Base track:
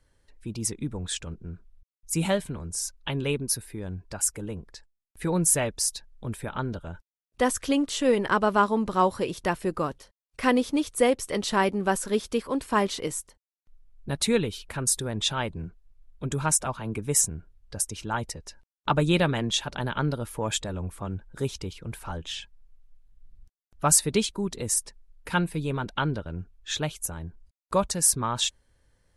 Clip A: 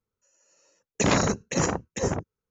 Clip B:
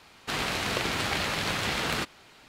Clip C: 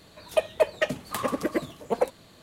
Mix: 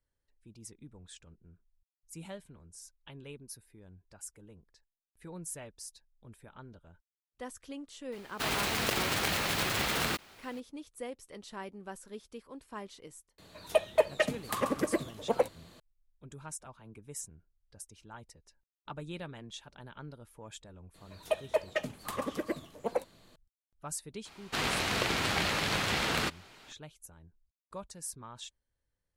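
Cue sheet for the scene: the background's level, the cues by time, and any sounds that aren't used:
base track -19.5 dB
8.12 add B -2.5 dB + block floating point 3-bit
13.38 add C -3 dB
20.94 add C -7.5 dB
24.25 add B -1.5 dB
not used: A

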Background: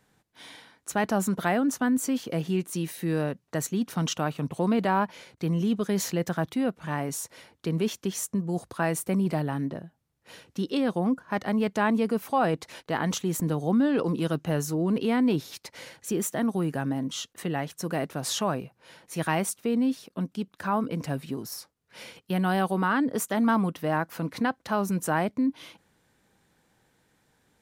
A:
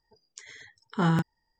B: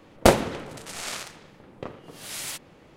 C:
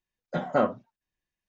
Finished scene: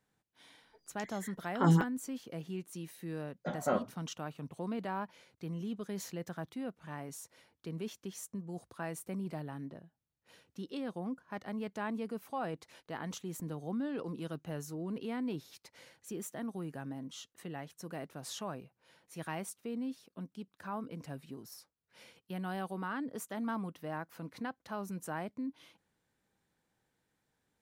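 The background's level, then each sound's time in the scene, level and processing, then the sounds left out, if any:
background -13.5 dB
0.62 add A + photocell phaser 3.5 Hz
3.12 add C -8 dB
not used: B

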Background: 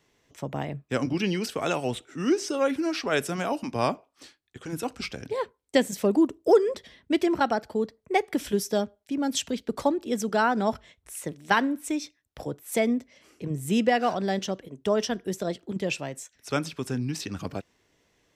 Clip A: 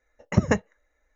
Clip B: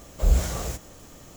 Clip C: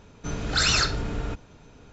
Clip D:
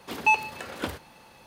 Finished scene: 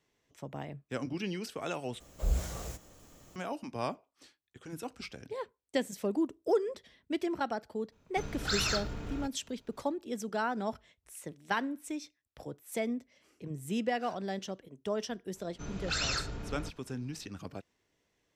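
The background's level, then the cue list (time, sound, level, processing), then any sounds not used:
background -9.5 dB
2 replace with B -10 dB
7.92 add C -9 dB + G.711 law mismatch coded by A
15.35 add C -11 dB
not used: A, D

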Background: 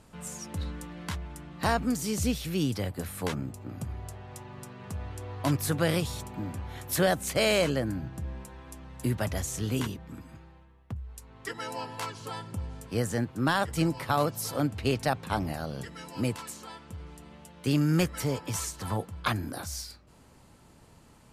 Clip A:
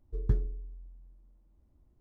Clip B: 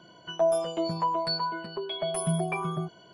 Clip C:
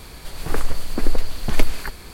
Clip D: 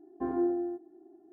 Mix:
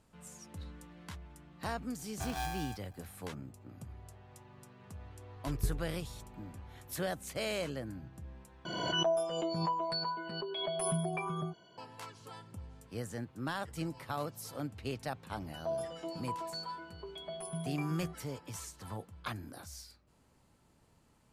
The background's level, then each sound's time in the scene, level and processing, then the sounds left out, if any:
background -11.5 dB
1.99 add D -9 dB + polarity switched at an audio rate 410 Hz
5.34 add A -6.5 dB
8.65 replace with B -7 dB + backwards sustainer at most 33 dB/s
15.26 add B -12.5 dB
not used: C

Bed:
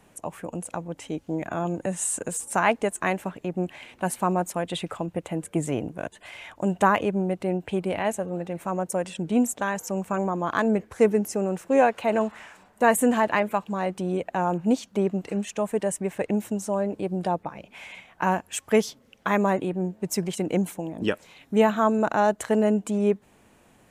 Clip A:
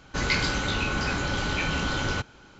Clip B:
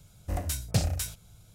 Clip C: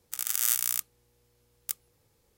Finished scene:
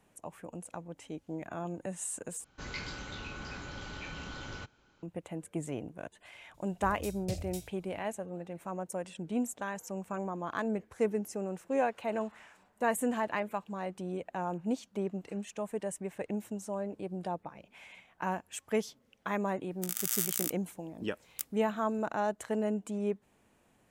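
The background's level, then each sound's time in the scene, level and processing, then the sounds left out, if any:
bed -10.5 dB
2.44 replace with A -15.5 dB
6.54 add B -12 dB + band shelf 1200 Hz -12.5 dB 1.2 oct
19.7 add C -4.5 dB + limiter -5.5 dBFS

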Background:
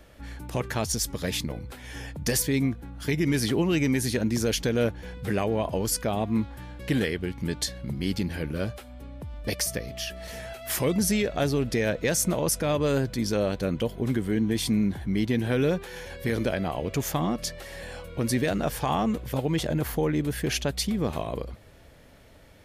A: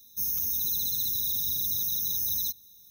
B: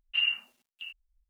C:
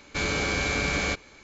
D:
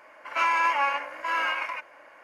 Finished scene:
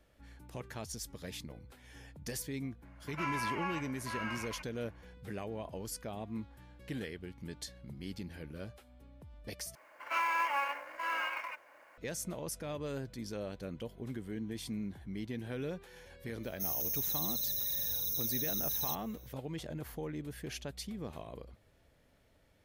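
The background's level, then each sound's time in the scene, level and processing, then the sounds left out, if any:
background -15 dB
2.82 add D -13.5 dB
9.75 replace with D -8.5 dB + companded quantiser 6-bit
16.43 add A -6.5 dB
not used: B, C

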